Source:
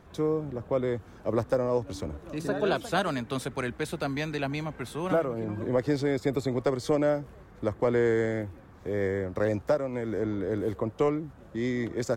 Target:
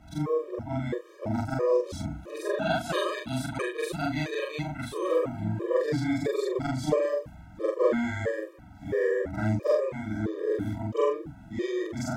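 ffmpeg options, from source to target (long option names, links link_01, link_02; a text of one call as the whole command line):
ffmpeg -i in.wav -af "afftfilt=real='re':imag='-im':win_size=4096:overlap=0.75,afftfilt=real='re*gt(sin(2*PI*1.5*pts/sr)*(1-2*mod(floor(b*sr/1024/320),2)),0)':imag='im*gt(sin(2*PI*1.5*pts/sr)*(1-2*mod(floor(b*sr/1024/320),2)),0)':win_size=1024:overlap=0.75,volume=8dB" out.wav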